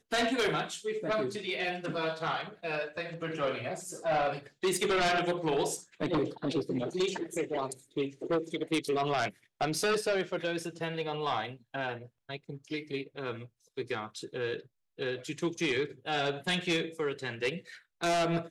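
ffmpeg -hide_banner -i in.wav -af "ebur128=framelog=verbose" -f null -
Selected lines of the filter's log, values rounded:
Integrated loudness:
  I:         -32.7 LUFS
  Threshold: -43.0 LUFS
Loudness range:
  LRA:         6.7 LU
  Threshold: -53.2 LUFS
  LRA low:   -37.7 LUFS
  LRA high:  -31.0 LUFS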